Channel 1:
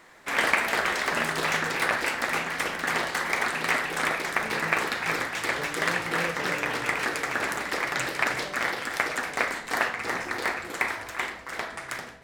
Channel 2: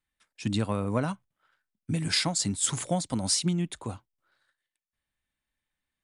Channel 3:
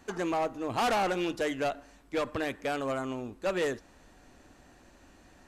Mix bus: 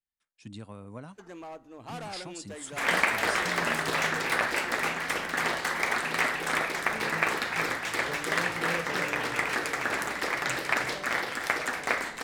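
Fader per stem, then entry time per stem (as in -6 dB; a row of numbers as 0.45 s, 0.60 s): -1.5 dB, -15.0 dB, -13.0 dB; 2.50 s, 0.00 s, 1.10 s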